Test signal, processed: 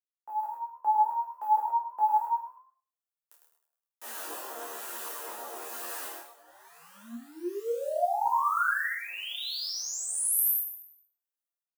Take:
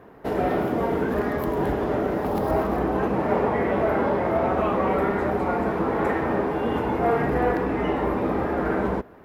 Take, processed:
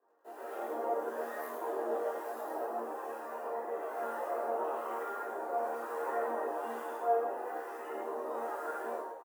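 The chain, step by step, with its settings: in parallel at -6 dB: bit crusher 6-bit; on the sum: level rider gain up to 15 dB; Bessel high-pass 560 Hz, order 8; on a send: frequency-shifting echo 104 ms, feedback 42%, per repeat +37 Hz, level -3 dB; on the sum: harmonic tremolo 1.1 Hz, depth 50%, crossover 1.1 kHz; peaking EQ 3.9 kHz -12.5 dB 2.1 oct; band-stop 2.2 kHz, Q 5.4; chord resonator D#2 fifth, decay 0.39 s; detune thickener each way 16 cents; trim -2 dB

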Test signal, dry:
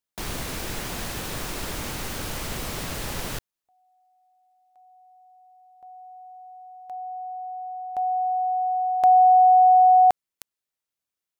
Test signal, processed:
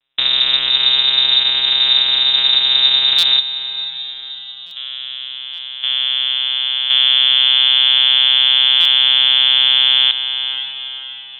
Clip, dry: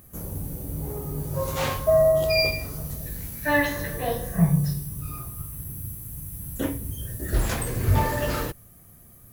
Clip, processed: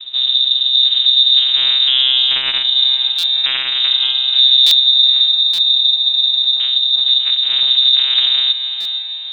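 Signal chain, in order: dynamic bell 730 Hz, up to -5 dB, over -29 dBFS, Q 0.77; compression 4:1, threshold -32 dBFS; hard clipper -33.5 dBFS; static phaser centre 1.3 kHz, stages 6; vocoder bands 4, saw 130 Hz; echo that smears into a reverb 530 ms, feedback 46%, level -10.5 dB; frequency inversion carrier 3.8 kHz; loudness maximiser +28.5 dB; buffer glitch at 3.18/4.66/5.53/8.80 s, samples 256, times 8; trim -1 dB

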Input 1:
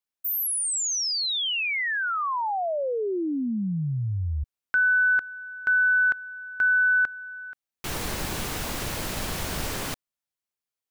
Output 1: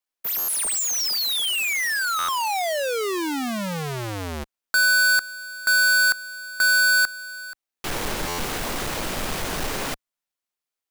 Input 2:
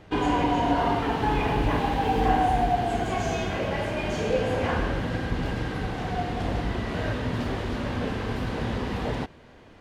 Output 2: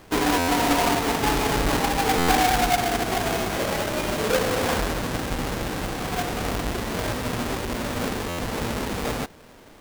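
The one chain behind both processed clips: square wave that keeps the level; peaking EQ 83 Hz -9 dB 2.5 oct; buffer glitch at 0.38/2.18/8.28 s, samples 512, times 8

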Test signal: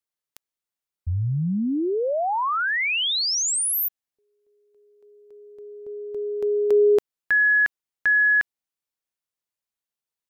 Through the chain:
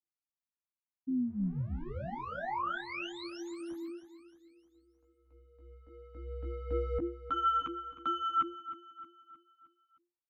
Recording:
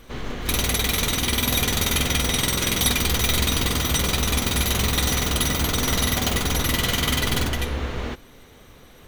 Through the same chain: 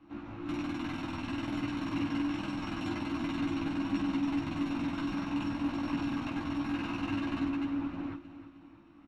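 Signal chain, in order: comb filter that takes the minimum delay 0.68 ms; low-pass 1.9 kHz 12 dB/octave; peaking EQ 370 Hz -6 dB 2.8 oct; chorus voices 2, 0.25 Hz, delay 15 ms, depth 4.1 ms; frequency shift -350 Hz; feedback delay 311 ms, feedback 49%, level -14 dB; trim -4.5 dB

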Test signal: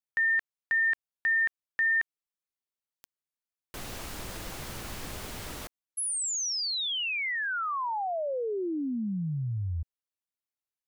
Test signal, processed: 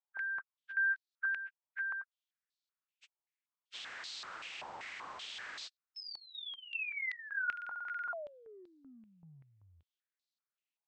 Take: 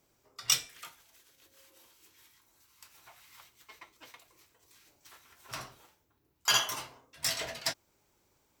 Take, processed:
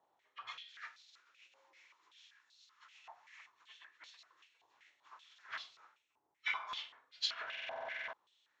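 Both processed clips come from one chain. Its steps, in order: knee-point frequency compression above 1.2 kHz 1.5:1; compression 10:1, threshold -35 dBFS; buffer glitch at 7.48 s, samples 2048, times 13; step-sequenced band-pass 5.2 Hz 850–4100 Hz; trim +7 dB

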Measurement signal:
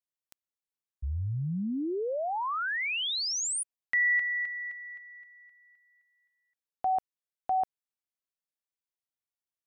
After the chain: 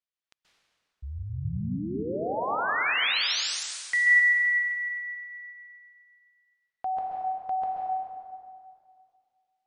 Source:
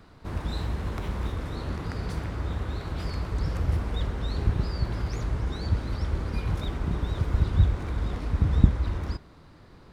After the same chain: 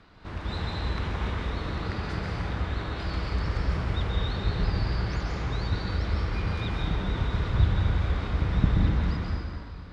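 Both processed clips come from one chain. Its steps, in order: low-pass 3.9 kHz 12 dB/octave; tilt shelf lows -4.5 dB, about 1.4 kHz; plate-style reverb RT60 2.2 s, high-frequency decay 0.75×, pre-delay 120 ms, DRR -3 dB

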